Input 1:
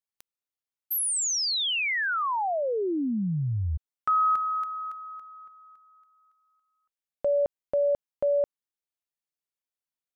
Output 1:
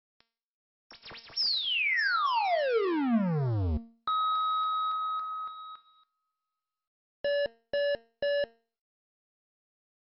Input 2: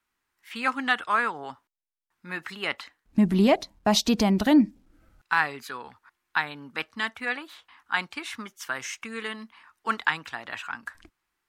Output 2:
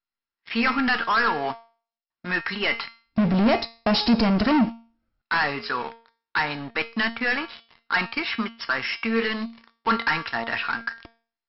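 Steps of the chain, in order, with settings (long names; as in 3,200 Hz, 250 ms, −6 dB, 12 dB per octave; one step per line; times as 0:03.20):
hum removal 420.2 Hz, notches 30
leveller curve on the samples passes 5
dynamic equaliser 3,500 Hz, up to −7 dB, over −40 dBFS, Q 6.2
tuned comb filter 230 Hz, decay 0.39 s, harmonics all, mix 70%
level +1.5 dB
MP2 48 kbit/s 44,100 Hz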